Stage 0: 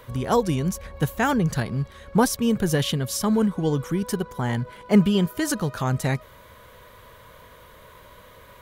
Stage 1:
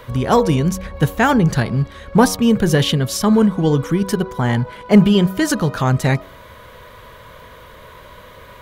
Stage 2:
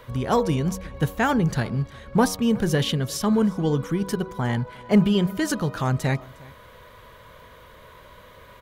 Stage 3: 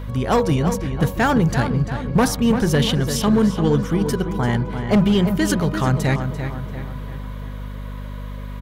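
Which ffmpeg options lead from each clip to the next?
-filter_complex "[0:a]bandreject=f=94.36:t=h:w=4,bandreject=f=188.72:t=h:w=4,bandreject=f=283.08:t=h:w=4,bandreject=f=377.44:t=h:w=4,bandreject=f=471.8:t=h:w=4,bandreject=f=566.16:t=h:w=4,bandreject=f=660.52:t=h:w=4,bandreject=f=754.88:t=h:w=4,bandreject=f=849.24:t=h:w=4,bandreject=f=943.6:t=h:w=4,bandreject=f=1.03796k:t=h:w=4,bandreject=f=1.13232k:t=h:w=4,bandreject=f=1.22668k:t=h:w=4,bandreject=f=1.32104k:t=h:w=4,acrossover=split=5800[a][b];[a]acontrast=52[c];[c][b]amix=inputs=2:normalize=0,volume=2dB"
-af "aecho=1:1:358:0.0668,volume=-7dB"
-filter_complex "[0:a]volume=15.5dB,asoftclip=hard,volume=-15.5dB,asplit=2[a][b];[b]adelay=342,lowpass=f=3.3k:p=1,volume=-8dB,asplit=2[c][d];[d]adelay=342,lowpass=f=3.3k:p=1,volume=0.51,asplit=2[e][f];[f]adelay=342,lowpass=f=3.3k:p=1,volume=0.51,asplit=2[g][h];[h]adelay=342,lowpass=f=3.3k:p=1,volume=0.51,asplit=2[i][j];[j]adelay=342,lowpass=f=3.3k:p=1,volume=0.51,asplit=2[k][l];[l]adelay=342,lowpass=f=3.3k:p=1,volume=0.51[m];[a][c][e][g][i][k][m]amix=inputs=7:normalize=0,aeval=exprs='val(0)+0.0224*(sin(2*PI*50*n/s)+sin(2*PI*2*50*n/s)/2+sin(2*PI*3*50*n/s)/3+sin(2*PI*4*50*n/s)/4+sin(2*PI*5*50*n/s)/5)':c=same,volume=4dB"

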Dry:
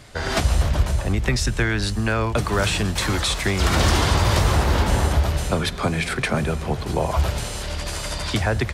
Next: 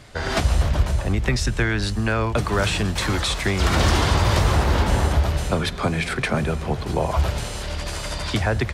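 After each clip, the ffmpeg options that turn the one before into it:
-af "highshelf=f=6.8k:g=-5"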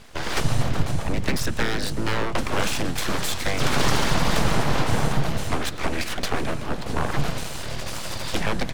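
-af "aeval=exprs='abs(val(0))':c=same"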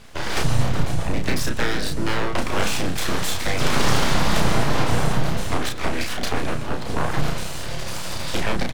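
-filter_complex "[0:a]asplit=2[a][b];[b]adelay=33,volume=-4dB[c];[a][c]amix=inputs=2:normalize=0"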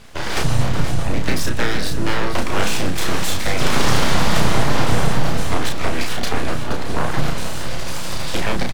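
-af "aecho=1:1:473|946|1419|1892|2365|2838:0.282|0.161|0.0916|0.0522|0.0298|0.017,volume=2dB"

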